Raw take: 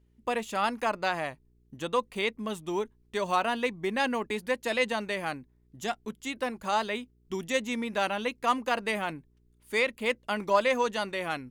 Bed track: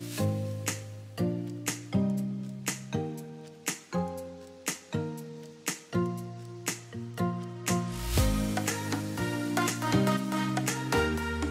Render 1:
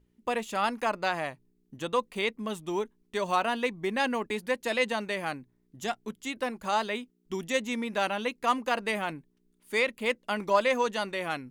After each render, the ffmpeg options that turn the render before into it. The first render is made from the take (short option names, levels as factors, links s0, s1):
-af "bandreject=f=60:t=h:w=4,bandreject=f=120:t=h:w=4"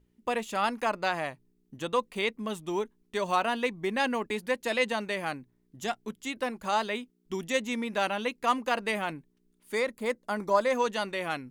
-filter_complex "[0:a]asettb=1/sr,asplit=3[s0][s1][s2];[s0]atrim=end=9.754[s3];[s1]atrim=start=9.75:end=10.72,asetpts=PTS-STARTPTS,afade=t=in:d=0.004:c=qsin,afade=t=out:st=0.966:d=0.004:c=qsin,equalizer=f=2800:t=o:w=0.65:g=-13[s4];[s2]atrim=start=10.716[s5];[s3][s4]acrossfade=d=0.004:c1=hsin:c2=qsin[s6];[s6][s5]acrossfade=d=0.004:c1=qsin:c2=hsin"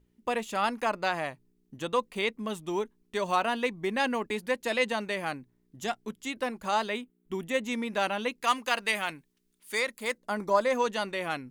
-filter_complex "[0:a]asettb=1/sr,asplit=3[s0][s1][s2];[s0]atrim=end=7.014[s3];[s1]atrim=start=7.01:end=7.63,asetpts=PTS-STARTPTS,afade=t=in:d=0.004:c=qsin,afade=t=out:st=0.616:d=0.004:c=qsin,equalizer=f=5300:t=o:w=0.89:g=-11.5[s4];[s2]atrim=start=7.626[s5];[s3][s4]acrossfade=d=0.004:c1=hsin:c2=qsin[s6];[s6][s5]acrossfade=d=0.004:c1=qsin:c2=hsin,asettb=1/sr,asplit=3[s7][s8][s9];[s7]atrim=end=8.414[s10];[s8]atrim=start=8.41:end=10.18,asetpts=PTS-STARTPTS,afade=t=in:d=0.004:c=qsin,afade=t=out:st=1.766:d=0.004:c=qsin,tiltshelf=f=1100:g=-6.5[s11];[s9]atrim=start=10.176[s12];[s10][s11]acrossfade=d=0.004:c1=hsin:c2=qsin[s13];[s13][s12]acrossfade=d=0.004:c1=qsin:c2=hsin"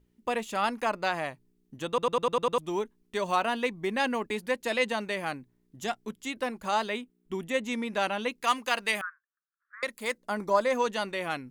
-filter_complex "[0:a]asettb=1/sr,asplit=3[s0][s1][s2];[s0]atrim=end=6.954[s3];[s1]atrim=start=6.95:end=8.29,asetpts=PTS-STARTPTS,afade=t=in:d=0.004:c=qsin,afade=t=out:st=1.336:d=0.004:c=qsin,equalizer=f=16000:w=1.5:g=-10.5[s4];[s2]atrim=start=8.286[s5];[s3][s4]acrossfade=d=0.004:c1=hsin:c2=qsin[s6];[s6][s5]acrossfade=d=0.004:c1=qsin:c2=hsin,asettb=1/sr,asplit=3[s7][s8][s9];[s7]atrim=end=9.014[s10];[s8]atrim=start=9.01:end=9.83,asetpts=PTS-STARTPTS,afade=t=in:d=0.004:c=qsin,afade=t=out:st=0.816:d=0.004:c=qsin,asuperpass=centerf=1400:order=8:qfactor=2.5[s11];[s9]atrim=start=9.826[s12];[s10][s11]acrossfade=d=0.004:c1=hsin:c2=qsin[s13];[s13][s12]acrossfade=d=0.004:c1=qsin:c2=hsin,asplit=8[s14][s15][s16][s17][s18][s19][s20][s21];[s14]atrim=end=1.982[s22];[s15]atrim=start=1.878:end=1.982[s23];[s16]atrim=start=1.878:end=1.982[s24];[s17]atrim=start=1.878:end=1.982[s25];[s18]atrim=start=1.878:end=1.982[s26];[s19]atrim=start=1.878:end=1.982[s27];[s20]atrim=start=1.878:end=1.982[s28];[s21]atrim=start=2.578[s29];[s22][s23]acrossfade=d=0.004:c1=hsin:c2=hsin[s30];[s30][s24]acrossfade=d=0.004:c1=hsin:c2=hsin[s31];[s31][s25]acrossfade=d=0.004:c1=hsin:c2=hsin[s32];[s32][s26]acrossfade=d=0.004:c1=hsin:c2=hsin[s33];[s33][s27]acrossfade=d=0.004:c1=hsin:c2=hsin[s34];[s34][s28]acrossfade=d=0.004:c1=hsin:c2=hsin[s35];[s35][s29]acrossfade=d=0.004:c1=hsin:c2=hsin"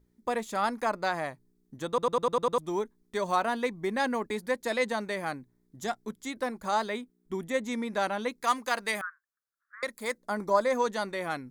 -af "equalizer=f=2800:t=o:w=0.32:g=-13.5"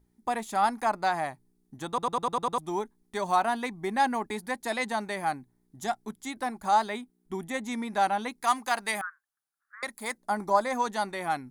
-af "equalizer=f=500:t=o:w=0.33:g=-9,equalizer=f=800:t=o:w=0.33:g=9,equalizer=f=10000:t=o:w=0.33:g=7"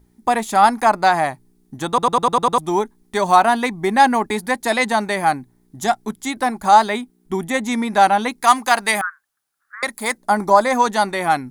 -af "volume=3.98,alimiter=limit=0.891:level=0:latency=1"